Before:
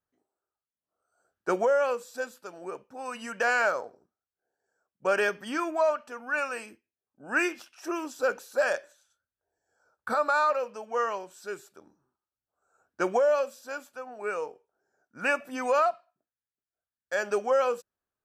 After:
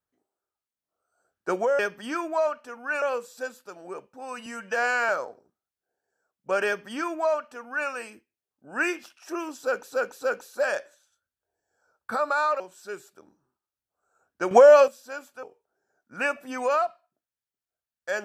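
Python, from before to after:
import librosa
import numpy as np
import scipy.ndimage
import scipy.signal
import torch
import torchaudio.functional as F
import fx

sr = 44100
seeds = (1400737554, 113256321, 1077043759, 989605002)

y = fx.edit(x, sr, fx.stretch_span(start_s=3.23, length_s=0.42, factor=1.5),
    fx.duplicate(start_s=5.22, length_s=1.23, to_s=1.79),
    fx.repeat(start_s=8.18, length_s=0.29, count=3),
    fx.cut(start_s=10.58, length_s=0.61),
    fx.clip_gain(start_s=13.1, length_s=0.37, db=10.5),
    fx.cut(start_s=14.02, length_s=0.45), tone=tone)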